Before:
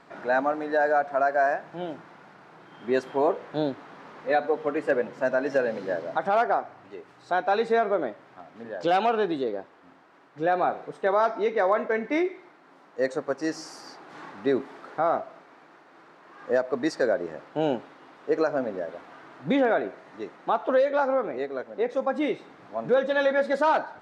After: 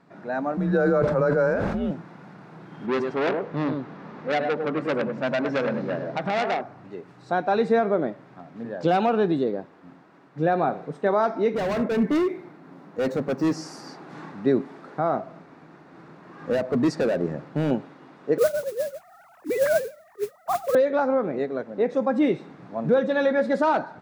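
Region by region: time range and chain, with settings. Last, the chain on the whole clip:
0.57–1.91 s: frequency shift -120 Hz + decay stretcher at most 36 dB/s
2.86–6.61 s: distance through air 79 m + delay 103 ms -7 dB + transformer saturation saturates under 2.3 kHz
11.54–13.53 s: median filter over 5 samples + bass shelf 380 Hz +7 dB + hard clipper -25.5 dBFS
15.23–17.71 s: bass shelf 150 Hz +10 dB + hard clipper -23 dBFS
18.38–20.75 s: formants replaced by sine waves + modulation noise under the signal 15 dB
whole clip: peaking EQ 160 Hz +13.5 dB 1.9 oct; band-stop 3.1 kHz, Q 20; level rider gain up to 9.5 dB; trim -8.5 dB

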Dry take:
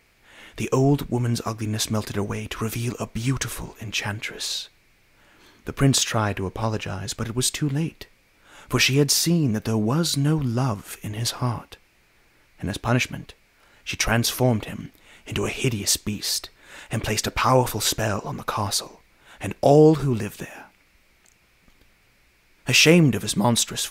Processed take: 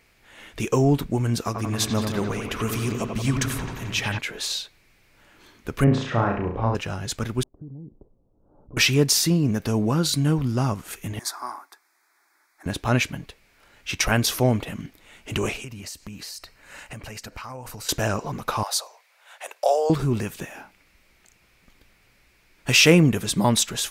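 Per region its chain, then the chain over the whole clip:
1.45–4.19 s: feedback echo behind a low-pass 88 ms, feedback 68%, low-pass 3 kHz, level -5 dB + tape noise reduction on one side only encoder only
5.84–6.75 s: low-pass 1.6 kHz + flutter echo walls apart 5.9 m, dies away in 0.52 s
7.43–8.77 s: overload inside the chain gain 16.5 dB + compression 5:1, threshold -37 dBFS + Gaussian low-pass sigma 13 samples
11.19–12.66 s: inverse Chebyshev high-pass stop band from 180 Hz + static phaser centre 1.2 kHz, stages 4
15.56–17.89 s: peaking EQ 360 Hz -8 dB 0.39 oct + band-stop 3.5 kHz, Q 5.6 + compression 8:1, threshold -34 dBFS
18.63–19.90 s: steep high-pass 550 Hz + dynamic bell 2.2 kHz, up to -6 dB, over -42 dBFS, Q 1.1
whole clip: none

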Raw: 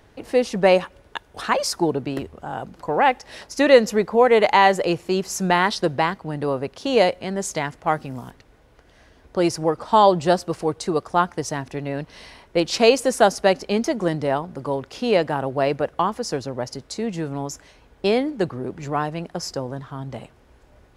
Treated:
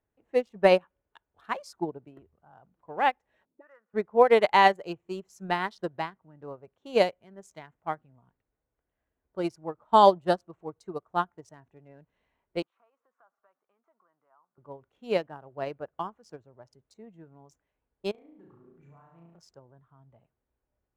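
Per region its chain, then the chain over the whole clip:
3.45–3.94 s: auto-wah 210–1400 Hz, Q 3.4, up, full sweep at -14.5 dBFS + tape spacing loss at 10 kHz 21 dB + three bands compressed up and down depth 40%
12.62–14.58 s: compression 10:1, threshold -22 dBFS + band-pass filter 1.2 kHz, Q 2.9
18.11–19.39 s: compression, threshold -29 dBFS + flutter echo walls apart 6.1 m, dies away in 1 s
whole clip: local Wiener filter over 9 samples; spectral noise reduction 6 dB; upward expansion 2.5:1, over -27 dBFS; trim -1.5 dB

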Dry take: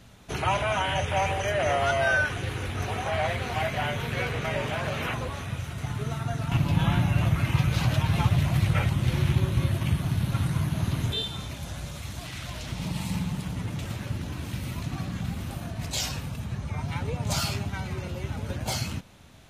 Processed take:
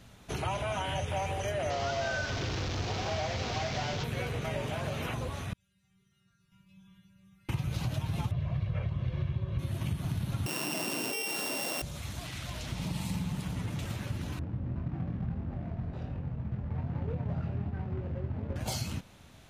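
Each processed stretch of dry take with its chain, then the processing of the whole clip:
1.70–4.04 s: one-bit delta coder 32 kbps, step -23.5 dBFS + bit-crushed delay 101 ms, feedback 55%, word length 9-bit, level -12.5 dB
5.53–7.49 s: amplifier tone stack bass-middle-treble 6-0-2 + inharmonic resonator 190 Hz, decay 0.48 s, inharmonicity 0.002
8.31–9.59 s: distance through air 290 m + comb 1.8 ms, depth 55%
10.46–11.82 s: sorted samples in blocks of 16 samples + high-pass 300 Hz 24 dB/octave + level flattener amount 100%
14.39–18.56 s: median filter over 41 samples + low-pass 2.3 kHz + doubling 24 ms -5 dB
whole clip: dynamic bell 1.7 kHz, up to -6 dB, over -41 dBFS, Q 0.75; compression, threshold -26 dBFS; trim -2.5 dB

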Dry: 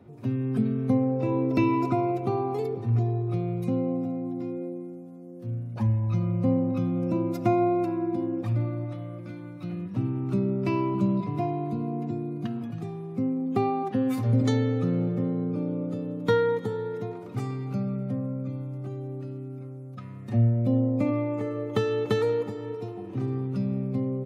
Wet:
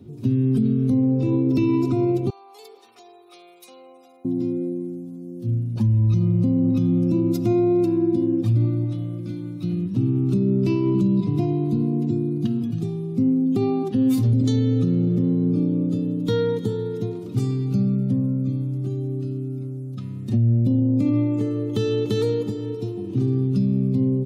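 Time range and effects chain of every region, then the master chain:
2.30–4.25 s: high-pass 750 Hz 24 dB/octave + compression, threshold -40 dBFS
whole clip: high-order bell 1.1 kHz -14 dB 2.5 oct; peak limiter -21.5 dBFS; trim +9 dB

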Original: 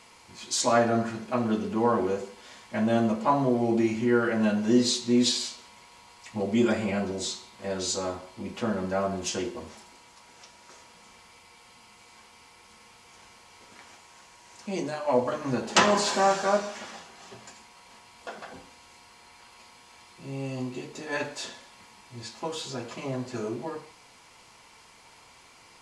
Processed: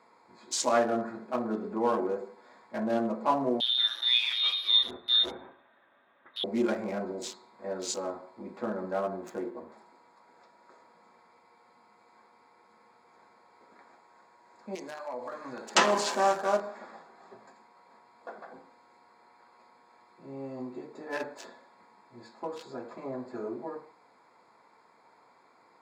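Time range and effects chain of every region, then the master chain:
3.60–6.44 s: Chebyshev high-pass 220 Hz + frequency inversion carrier 3.9 kHz
9.02–9.72 s: median filter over 9 samples + treble shelf 8.7 kHz +3 dB
14.75–15.75 s: tilt shelf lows -8.5 dB, about 1.2 kHz + compression, threshold -30 dBFS
whole clip: local Wiener filter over 15 samples; high-pass 260 Hz 12 dB/octave; trim -2 dB

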